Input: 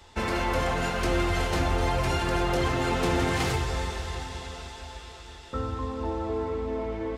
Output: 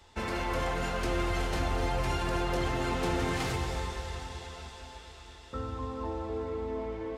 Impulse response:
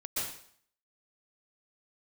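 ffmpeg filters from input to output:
-filter_complex "[0:a]asplit=2[link_01][link_02];[1:a]atrim=start_sample=2205,asetrate=74970,aresample=44100,adelay=145[link_03];[link_02][link_03]afir=irnorm=-1:irlink=0,volume=-9.5dB[link_04];[link_01][link_04]amix=inputs=2:normalize=0,volume=-5.5dB"

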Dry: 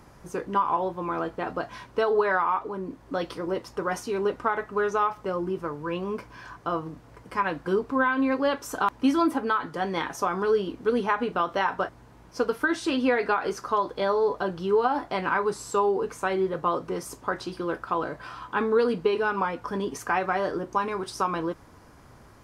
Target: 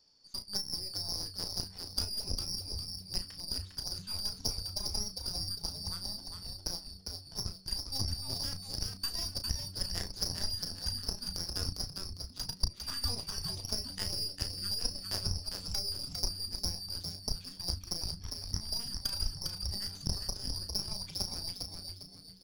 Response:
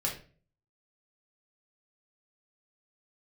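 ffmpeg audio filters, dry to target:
-filter_complex "[0:a]afftfilt=real='real(if(lt(b,272),68*(eq(floor(b/68),0)*1+eq(floor(b/68),1)*2+eq(floor(b/68),2)*3+eq(floor(b/68),3)*0)+mod(b,68),b),0)':imag='imag(if(lt(b,272),68*(eq(floor(b/68),0)*1+eq(floor(b/68),1)*2+eq(floor(b/68),2)*3+eq(floor(b/68),3)*0)+mod(b,68),b),0)':win_size=2048:overlap=0.75,asubboost=boost=8:cutoff=95,acompressor=threshold=-26dB:ratio=8,aresample=16000,aeval=exprs='clip(val(0),-1,0.0708)':channel_layout=same,aresample=44100,aeval=exprs='0.141*(cos(1*acos(clip(val(0)/0.141,-1,1)))-cos(1*PI/2))+0.0398*(cos(3*acos(clip(val(0)/0.141,-1,1)))-cos(3*PI/2))+0.00891*(cos(4*acos(clip(val(0)/0.141,-1,1)))-cos(4*PI/2))':channel_layout=same,asplit=2[link_01][link_02];[link_02]adelay=34,volume=-9dB[link_03];[link_01][link_03]amix=inputs=2:normalize=0,asplit=2[link_04][link_05];[link_05]asplit=5[link_06][link_07][link_08][link_09][link_10];[link_06]adelay=403,afreqshift=-95,volume=-4.5dB[link_11];[link_07]adelay=806,afreqshift=-190,volume=-13.4dB[link_12];[link_08]adelay=1209,afreqshift=-285,volume=-22.2dB[link_13];[link_09]adelay=1612,afreqshift=-380,volume=-31.1dB[link_14];[link_10]adelay=2015,afreqshift=-475,volume=-40dB[link_15];[link_11][link_12][link_13][link_14][link_15]amix=inputs=5:normalize=0[link_16];[link_04][link_16]amix=inputs=2:normalize=0"

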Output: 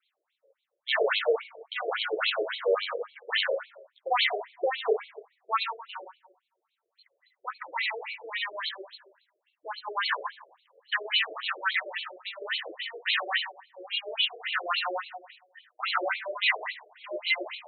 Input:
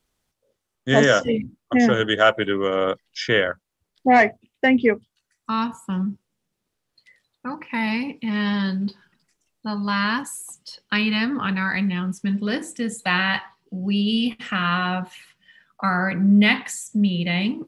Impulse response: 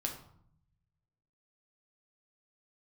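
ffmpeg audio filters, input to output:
-filter_complex "[0:a]asoftclip=type=hard:threshold=-20.5dB,lowpass=frequency=4300:width_type=q:width=2.9[link_01];[1:a]atrim=start_sample=2205,asetrate=35280,aresample=44100[link_02];[link_01][link_02]afir=irnorm=-1:irlink=0,afftfilt=real='re*between(b*sr/1024,470*pow(3100/470,0.5+0.5*sin(2*PI*3.6*pts/sr))/1.41,470*pow(3100/470,0.5+0.5*sin(2*PI*3.6*pts/sr))*1.41)':imag='im*between(b*sr/1024,470*pow(3100/470,0.5+0.5*sin(2*PI*3.6*pts/sr))/1.41,470*pow(3100/470,0.5+0.5*sin(2*PI*3.6*pts/sr))*1.41)':win_size=1024:overlap=0.75"

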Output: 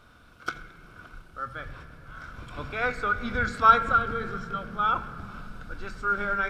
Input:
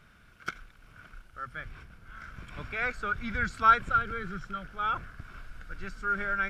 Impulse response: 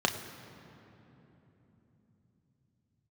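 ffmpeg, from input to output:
-filter_complex "[0:a]asplit=2[link_01][link_02];[1:a]atrim=start_sample=2205,asetrate=57330,aresample=44100,highshelf=frequency=3600:gain=-6.5[link_03];[link_02][link_03]afir=irnorm=-1:irlink=0,volume=-8.5dB[link_04];[link_01][link_04]amix=inputs=2:normalize=0,volume=2dB"

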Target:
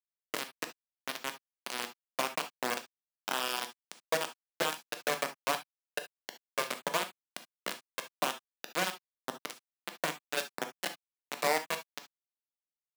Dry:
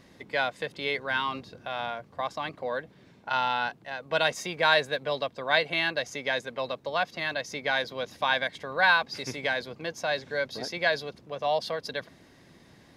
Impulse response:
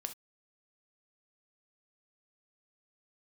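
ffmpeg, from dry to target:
-filter_complex "[0:a]asplit=2[link_01][link_02];[link_02]alimiter=limit=-18dB:level=0:latency=1:release=97,volume=-1.5dB[link_03];[link_01][link_03]amix=inputs=2:normalize=0,acompressor=threshold=-27dB:ratio=3,lowpass=frequency=1400:width=0.5412,lowpass=frequency=1400:width=1.3066,acrusher=bits=3:mix=0:aa=0.000001,highpass=frequency=190:width=0.5412,highpass=frequency=190:width=1.3066[link_04];[1:a]atrim=start_sample=2205[link_05];[link_04][link_05]afir=irnorm=-1:irlink=0"

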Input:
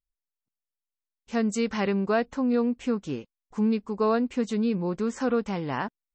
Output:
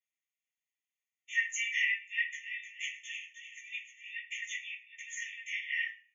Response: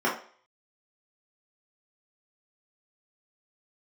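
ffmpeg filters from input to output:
-filter_complex "[0:a]acompressor=threshold=-30dB:ratio=1.5,asettb=1/sr,asplit=3[link_01][link_02][link_03];[link_01]atrim=end=1.894[link_04];[link_02]atrim=start=1.89:end=4.11,asetpts=PTS-STARTPTS,afade=type=in:duration=0.004:curve=qsin,afade=type=out:start_time=2.216:duration=0.004:curve=qsin,asplit=7[link_05][link_06][link_07][link_08][link_09][link_10][link_11];[link_06]adelay=307,afreqshift=84,volume=-9.5dB[link_12];[link_07]adelay=614,afreqshift=168,volume=-15.2dB[link_13];[link_08]adelay=921,afreqshift=252,volume=-20.9dB[link_14];[link_09]adelay=1228,afreqshift=336,volume=-26.5dB[link_15];[link_10]adelay=1535,afreqshift=420,volume=-32.2dB[link_16];[link_11]adelay=1842,afreqshift=504,volume=-37.9dB[link_17];[link_05][link_12][link_13][link_14][link_15][link_16][link_17]amix=inputs=7:normalize=0,atrim=end_sample=97902[link_18];[link_03]atrim=start=4.106[link_19];[link_04][link_18]acrossfade=duration=0.004:curve1=hsin:curve2=qsin[link_20];[link_20][link_19]acrossfade=duration=0.004:curve1=qsin:curve2=hsin[link_21];[1:a]atrim=start_sample=2205,asetrate=52920,aresample=44100[link_22];[link_21][link_22]afir=irnorm=-1:irlink=0,afftfilt=real='re*eq(mod(floor(b*sr/1024/1800),2),1)':imag='im*eq(mod(floor(b*sr/1024/1800),2),1)':win_size=1024:overlap=0.75"

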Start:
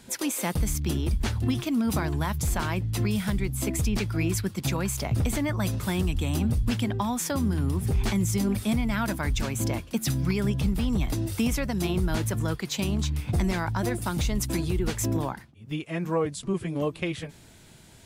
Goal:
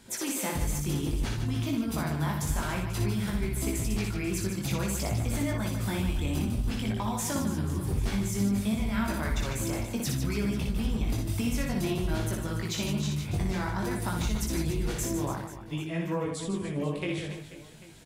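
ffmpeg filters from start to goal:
ffmpeg -i in.wav -filter_complex "[0:a]flanger=delay=18:depth=3:speed=0.56,acompressor=threshold=-27dB:ratio=6,asplit=2[link_01][link_02];[link_02]aecho=0:1:60|150|285|487.5|791.2:0.631|0.398|0.251|0.158|0.1[link_03];[link_01][link_03]amix=inputs=2:normalize=0" out.wav

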